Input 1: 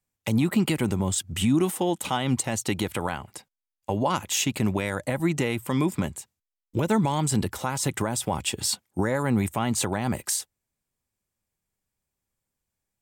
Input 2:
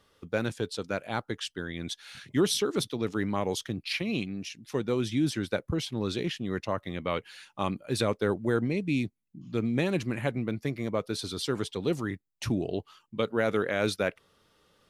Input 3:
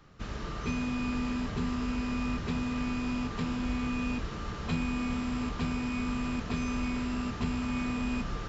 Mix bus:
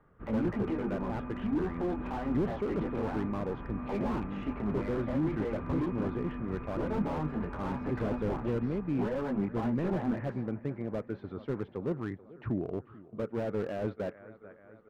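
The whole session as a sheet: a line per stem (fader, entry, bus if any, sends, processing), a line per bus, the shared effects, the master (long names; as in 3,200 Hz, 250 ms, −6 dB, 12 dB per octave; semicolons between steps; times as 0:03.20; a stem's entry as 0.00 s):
−8.5 dB, 0.00 s, no send, echo send −19 dB, high-pass filter 220 Hz 12 dB per octave; leveller curve on the samples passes 2; micro pitch shift up and down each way 11 cents
−3.5 dB, 0.00 s, no send, echo send −20.5 dB, no processing
−8.0 dB, 0.00 s, no send, echo send −5.5 dB, no processing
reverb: not used
echo: repeating echo 437 ms, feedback 60%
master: low-pass filter 1,700 Hz 24 dB per octave; slew-rate limiting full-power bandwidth 16 Hz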